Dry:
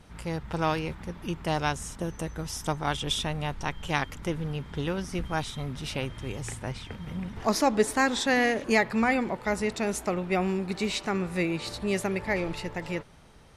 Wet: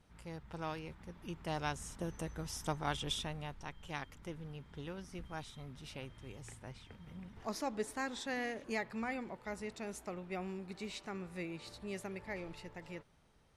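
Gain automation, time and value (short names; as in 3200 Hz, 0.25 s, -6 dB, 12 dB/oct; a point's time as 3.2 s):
0.82 s -14.5 dB
2.05 s -8 dB
3.01 s -8 dB
3.65 s -15 dB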